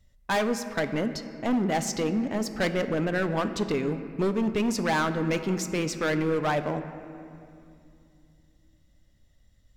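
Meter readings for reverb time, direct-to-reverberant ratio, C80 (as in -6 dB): 2.5 s, 9.0 dB, 11.0 dB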